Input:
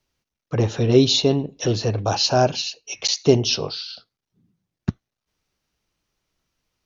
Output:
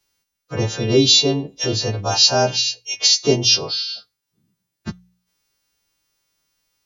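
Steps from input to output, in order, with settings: partials quantised in pitch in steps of 2 st; de-hum 60.03 Hz, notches 3

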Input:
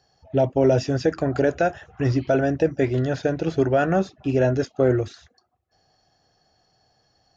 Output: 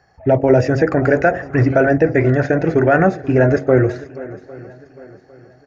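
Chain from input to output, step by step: de-hum 45.21 Hz, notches 19; tempo 1.3×; in parallel at -0.5 dB: peak limiter -17.5 dBFS, peak gain reduction 9 dB; on the sum: resonant high shelf 2.6 kHz -8 dB, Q 3; on a send: shuffle delay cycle 804 ms, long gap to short 1.5:1, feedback 35%, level -18.5 dB; on the sum: trim +3.5 dB

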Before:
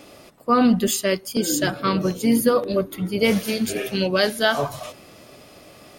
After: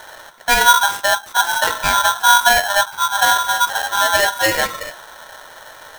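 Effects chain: median filter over 15 samples; peaking EQ 1.8 kHz -10 dB 1.9 oct; hum notches 50/100/150/200/250/300/350/400/450/500 Hz; in parallel at -3 dB: compression, threshold -35 dBFS, peak gain reduction 19.5 dB; on the sum: polarity switched at an audio rate 1.2 kHz; trim +6.5 dB

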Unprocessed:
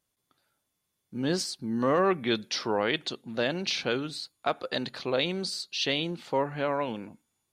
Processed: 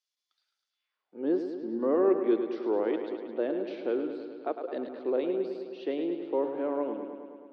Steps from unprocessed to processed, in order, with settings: band-pass sweep 5.4 kHz -> 330 Hz, 0.68–1.27 s; three-band isolator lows -23 dB, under 290 Hz, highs -14 dB, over 4.1 kHz; bucket-brigade echo 106 ms, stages 4096, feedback 71%, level -8.5 dB; trim +7.5 dB

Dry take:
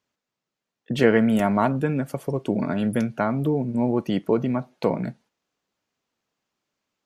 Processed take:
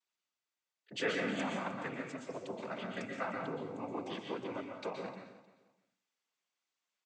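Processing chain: low-pass 1.4 kHz 6 dB/octave; differentiator; 1.12–1.66 s: compressor with a negative ratio -44 dBFS, ratio -0.5; noise-vocoded speech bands 16; feedback delay 307 ms, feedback 24%, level -17 dB; plate-style reverb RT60 0.55 s, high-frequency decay 0.9×, pre-delay 110 ms, DRR 2 dB; trim +7 dB

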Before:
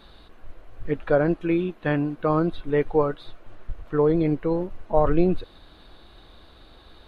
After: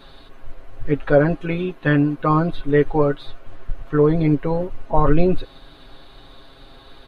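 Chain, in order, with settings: comb 7.4 ms, depth 80%; trim +3.5 dB

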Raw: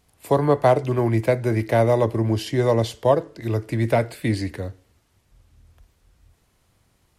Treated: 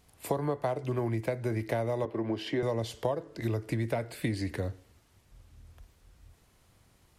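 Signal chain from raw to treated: 2.05–2.63 s: three-band isolator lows -14 dB, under 210 Hz, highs -17 dB, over 3.8 kHz; compression 10:1, threshold -27 dBFS, peak gain reduction 16 dB

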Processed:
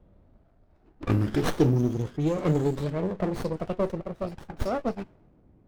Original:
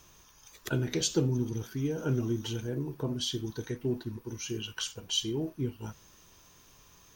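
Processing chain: gliding tape speed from 52% -> 200%; level-controlled noise filter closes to 390 Hz, open at -26 dBFS; sliding maximum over 17 samples; trim +6.5 dB

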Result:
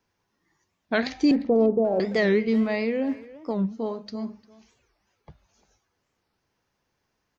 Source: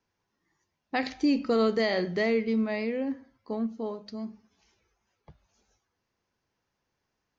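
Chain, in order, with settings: 1.31–2.00 s: steep low-pass 900 Hz 48 dB/octave; speakerphone echo 350 ms, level -17 dB; warped record 45 rpm, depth 250 cents; trim +4.5 dB

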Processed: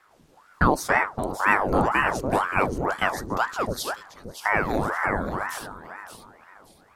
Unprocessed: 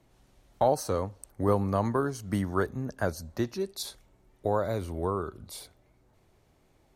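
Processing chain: echo whose repeats swap between lows and highs 287 ms, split 810 Hz, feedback 54%, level -4 dB; ring modulator with a swept carrier 780 Hz, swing 85%, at 2 Hz; trim +7 dB

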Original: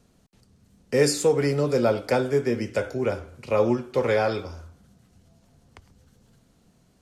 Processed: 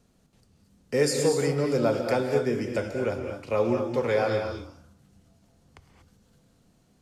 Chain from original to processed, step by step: gated-style reverb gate 260 ms rising, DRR 4.5 dB; trim -3.5 dB

